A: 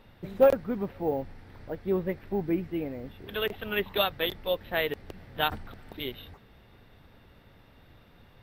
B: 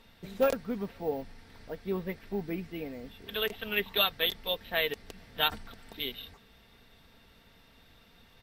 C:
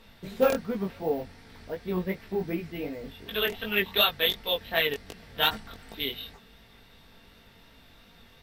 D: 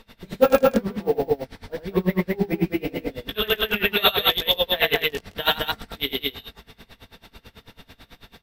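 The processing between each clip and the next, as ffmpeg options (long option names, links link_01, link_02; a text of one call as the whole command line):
ffmpeg -i in.wav -af "equalizer=frequency=6900:width_type=o:width=2.6:gain=13,aecho=1:1:4.4:0.38,volume=-5.5dB" out.wav
ffmpeg -i in.wav -af "acontrast=86,flanger=delay=18:depth=4.4:speed=2.7" out.wav
ffmpeg -i in.wav -filter_complex "[0:a]asplit=2[link_01][link_02];[link_02]aecho=0:1:81.63|212.8:0.891|0.891[link_03];[link_01][link_03]amix=inputs=2:normalize=0,aeval=exprs='val(0)*pow(10,-24*(0.5-0.5*cos(2*PI*9.1*n/s))/20)':channel_layout=same,volume=8.5dB" out.wav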